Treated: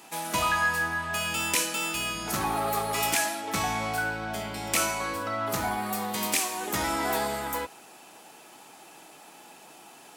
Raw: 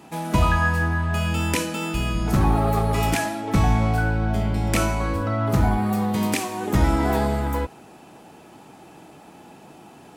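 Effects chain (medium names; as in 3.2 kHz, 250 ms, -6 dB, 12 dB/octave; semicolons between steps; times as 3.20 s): high-pass 920 Hz 6 dB/octave; treble shelf 4.2 kHz +7.5 dB; saturation -15.5 dBFS, distortion -17 dB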